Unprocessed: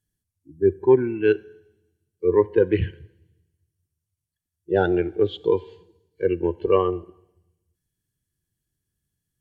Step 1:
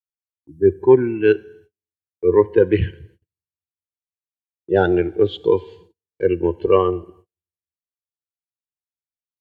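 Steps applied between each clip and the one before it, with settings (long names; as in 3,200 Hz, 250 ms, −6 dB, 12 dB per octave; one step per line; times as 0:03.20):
noise gate −52 dBFS, range −38 dB
level +4 dB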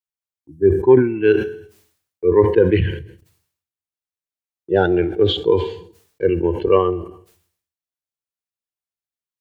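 level that may fall only so fast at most 92 dB per second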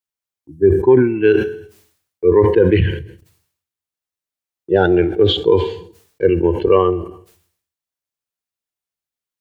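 boost into a limiter +4.5 dB
level −1 dB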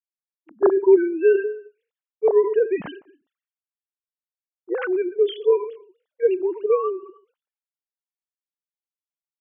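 three sine waves on the formant tracks
level −6 dB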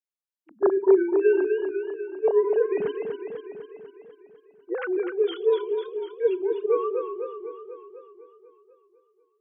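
feedback echo with a swinging delay time 248 ms, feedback 62%, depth 113 cents, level −6.5 dB
level −4 dB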